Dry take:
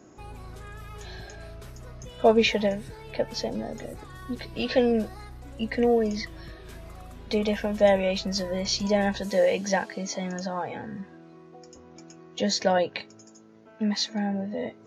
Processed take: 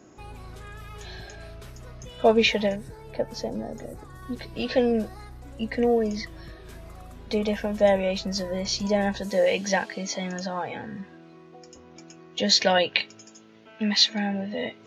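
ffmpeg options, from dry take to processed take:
ffmpeg -i in.wav -af "asetnsamples=nb_out_samples=441:pad=0,asendcmd='2.76 equalizer g -9;4.23 equalizer g -1.5;9.46 equalizer g 6;12.49 equalizer g 14.5',equalizer=frequency=3000:width_type=o:width=1.4:gain=3" out.wav

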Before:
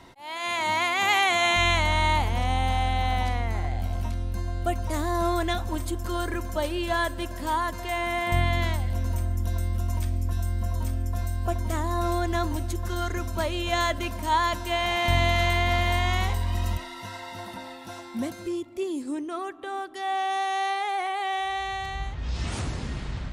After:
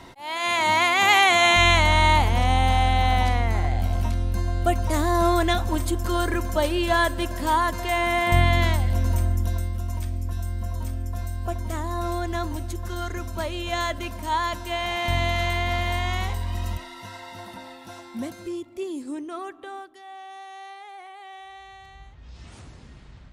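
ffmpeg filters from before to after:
ffmpeg -i in.wav -af "volume=5dB,afade=type=out:start_time=9.27:duration=0.46:silence=0.473151,afade=type=out:start_time=19.56:duration=0.47:silence=0.237137" out.wav

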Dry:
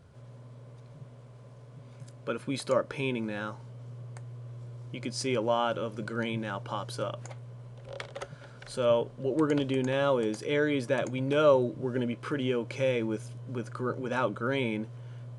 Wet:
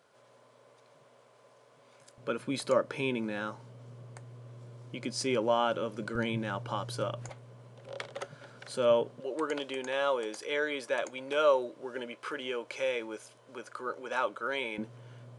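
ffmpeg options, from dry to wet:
ffmpeg -i in.wav -af "asetnsamples=nb_out_samples=441:pad=0,asendcmd='2.18 highpass f 160;6.15 highpass f 47;7.29 highpass f 180;9.2 highpass f 560;14.78 highpass f 180',highpass=520" out.wav

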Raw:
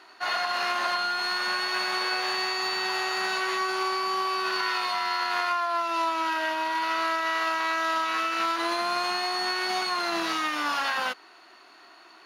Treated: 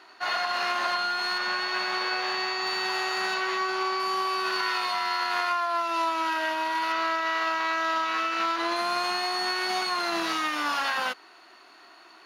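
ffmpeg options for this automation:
ffmpeg -i in.wav -af "asetnsamples=nb_out_samples=441:pad=0,asendcmd='1.38 equalizer g -14;2.67 equalizer g -3.5;3.34 equalizer g -12;4 equalizer g 0;6.92 equalizer g -10;8.76 equalizer g 0.5',equalizer=frequency=11000:width_type=o:width=0.84:gain=-4" out.wav

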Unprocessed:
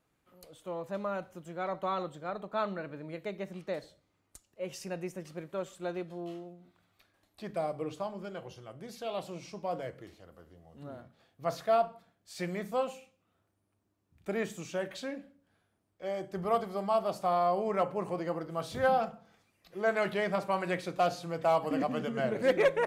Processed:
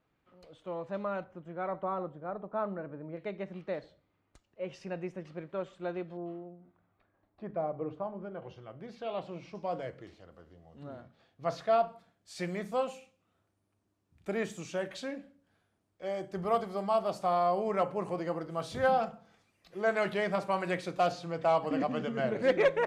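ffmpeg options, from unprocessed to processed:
ffmpeg -i in.wav -af "asetnsamples=nb_out_samples=441:pad=0,asendcmd='1.24 lowpass f 1900;1.83 lowpass f 1200;3.17 lowpass f 3100;6.17 lowpass f 1300;8.42 lowpass f 2900;9.55 lowpass f 5800;11.88 lowpass f 10000;21.12 lowpass f 6100',lowpass=3700" out.wav

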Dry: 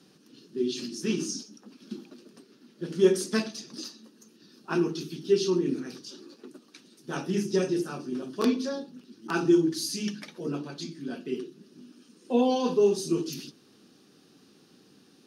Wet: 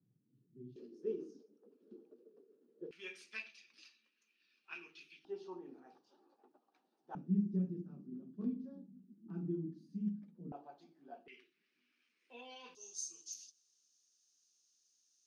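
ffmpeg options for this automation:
ffmpeg -i in.wav -af "asetnsamples=nb_out_samples=441:pad=0,asendcmd='0.76 bandpass f 450;2.91 bandpass f 2400;5.25 bandpass f 790;7.15 bandpass f 190;10.52 bandpass f 750;11.28 bandpass f 2200;12.75 bandpass f 6400',bandpass=frequency=120:width_type=q:width=8.4:csg=0" out.wav

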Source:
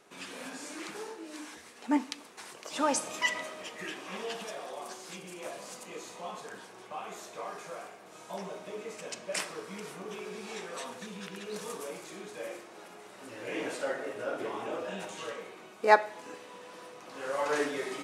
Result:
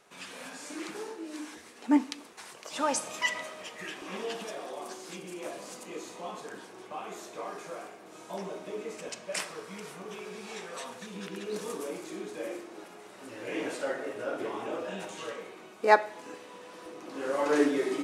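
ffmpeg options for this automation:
ffmpeg -i in.wav -af "asetnsamples=nb_out_samples=441:pad=0,asendcmd='0.7 equalizer g 5;2.33 equalizer g -3;4.02 equalizer g 7;9.09 equalizer g -2;11.14 equalizer g 9.5;12.84 equalizer g 3;16.86 equalizer g 12.5',equalizer=frequency=310:width_type=o:width=0.86:gain=-6" out.wav

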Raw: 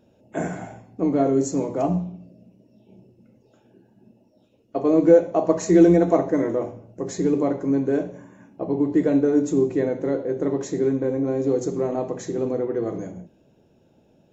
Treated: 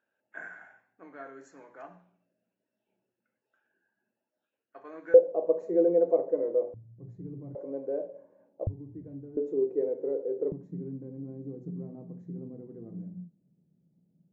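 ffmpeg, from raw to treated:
ffmpeg -i in.wav -af "asetnsamples=nb_out_samples=441:pad=0,asendcmd='5.14 bandpass f 500;6.74 bandpass f 120;7.55 bandpass f 550;8.67 bandpass f 100;9.37 bandpass f 450;10.52 bandpass f 170',bandpass=frequency=1600:width_type=q:width=6.7:csg=0" out.wav

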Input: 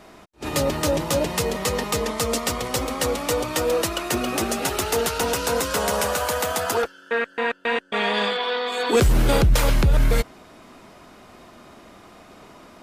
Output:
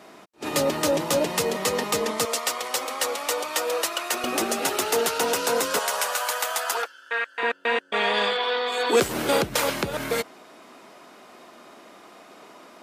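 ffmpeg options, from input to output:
ffmpeg -i in.wav -af "asetnsamples=nb_out_samples=441:pad=0,asendcmd='2.25 highpass f 620;4.24 highpass f 260;5.79 highpass f 840;7.43 highpass f 290',highpass=200" out.wav

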